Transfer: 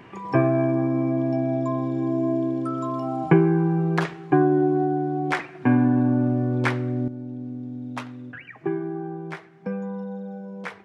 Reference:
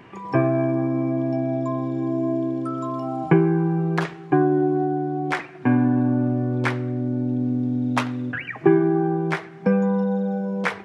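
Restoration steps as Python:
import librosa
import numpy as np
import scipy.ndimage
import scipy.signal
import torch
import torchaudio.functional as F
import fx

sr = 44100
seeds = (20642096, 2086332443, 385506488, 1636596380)

y = fx.fix_level(x, sr, at_s=7.08, step_db=10.5)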